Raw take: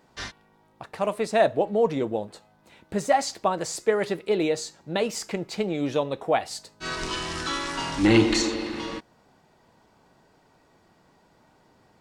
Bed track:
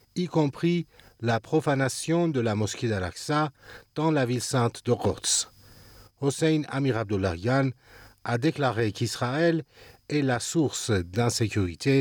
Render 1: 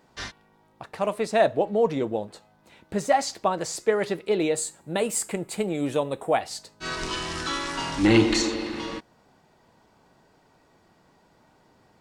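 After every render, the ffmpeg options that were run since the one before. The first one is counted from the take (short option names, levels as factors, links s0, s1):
-filter_complex "[0:a]asettb=1/sr,asplit=3[s0][s1][s2];[s0]atrim=end=4.554[s3];[s1]atrim=start=4.55:end=6.4,asetpts=PTS-STARTPTS,afade=t=in:d=0.004:c=qsin,afade=t=out:st=1.846:d=0.004:c=qsin,highshelf=f=6900:t=q:w=3:g=7.5[s4];[s2]atrim=start=6.396[s5];[s3][s4]acrossfade=d=0.004:c1=hsin:c2=qsin[s6];[s6][s5]acrossfade=d=0.004:c1=qsin:c2=hsin"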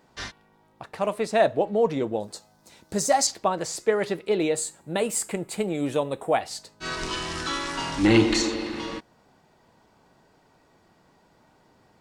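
-filter_complex "[0:a]asettb=1/sr,asplit=3[s0][s1][s2];[s0]atrim=end=2.204[s3];[s1]atrim=start=2.2:end=3.27,asetpts=PTS-STARTPTS,afade=t=in:d=0.004:c=qsin,afade=t=out:st=1.066:d=0.004:c=qsin,highshelf=f=3900:t=q:w=1.5:g=9.5[s4];[s2]atrim=start=3.266[s5];[s3][s4]acrossfade=d=0.004:c1=hsin:c2=qsin[s6];[s6][s5]acrossfade=d=0.004:c1=qsin:c2=hsin"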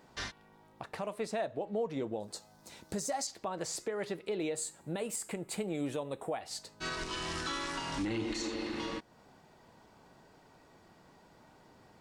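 -af "acompressor=threshold=0.00708:ratio=1.5,alimiter=level_in=1.26:limit=0.0631:level=0:latency=1:release=179,volume=0.794"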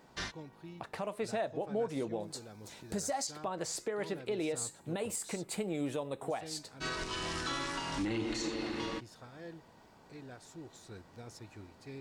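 -filter_complex "[1:a]volume=0.0562[s0];[0:a][s0]amix=inputs=2:normalize=0"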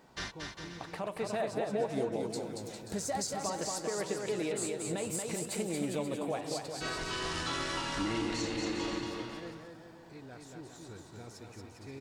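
-af "aecho=1:1:230|402.5|531.9|628.9|701.7:0.631|0.398|0.251|0.158|0.1"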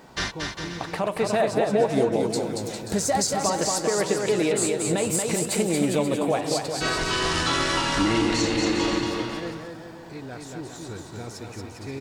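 -af "volume=3.76"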